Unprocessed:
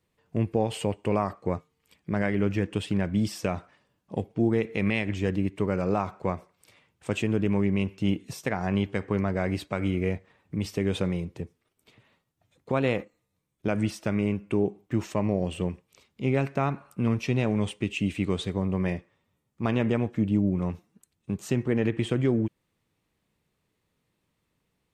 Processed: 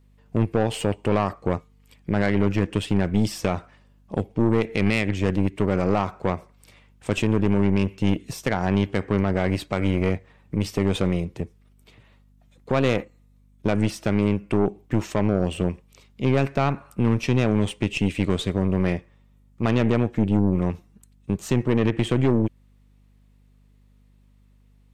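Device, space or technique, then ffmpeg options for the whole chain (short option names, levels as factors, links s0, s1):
valve amplifier with mains hum: -af "aeval=exprs='(tanh(12.6*val(0)+0.65)-tanh(0.65))/12.6':c=same,aeval=exprs='val(0)+0.000708*(sin(2*PI*50*n/s)+sin(2*PI*2*50*n/s)/2+sin(2*PI*3*50*n/s)/3+sin(2*PI*4*50*n/s)/4+sin(2*PI*5*50*n/s)/5)':c=same,volume=2.51"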